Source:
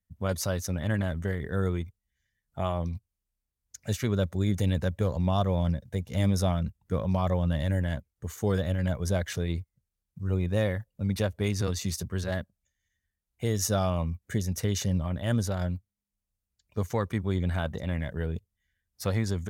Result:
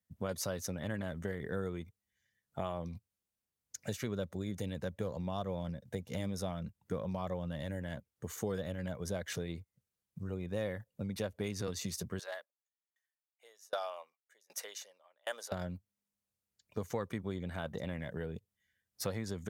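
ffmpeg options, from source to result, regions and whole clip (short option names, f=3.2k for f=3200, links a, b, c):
-filter_complex "[0:a]asettb=1/sr,asplit=3[a][b][c];[a]atrim=end=12.194[d];[b]atrim=start=12.19:end=15.52,asetpts=PTS-STARTPTS,afade=t=in:d=0.004:c=qsin,afade=t=out:st=3.326:d=0.004:c=qsin,highpass=f=600:w=0.5412,highpass=f=600:w=1.3066,aeval=exprs='val(0)*pow(10,-33*if(lt(mod(1.3*n/s,1),2*abs(1.3)/1000),1-mod(1.3*n/s,1)/(2*abs(1.3)/1000),(mod(1.3*n/s,1)-2*abs(1.3)/1000)/(1-2*abs(1.3)/1000))/20)':c=same[e];[c]atrim=start=15.516[f];[d][e]acrossfade=d=0.004:c1=hsin:c2=qsin[g];[g][f]acrossfade=d=0.004:c1=qsin:c2=hsin,acompressor=threshold=-34dB:ratio=4,highpass=130,equalizer=f=490:w=3.9:g=3"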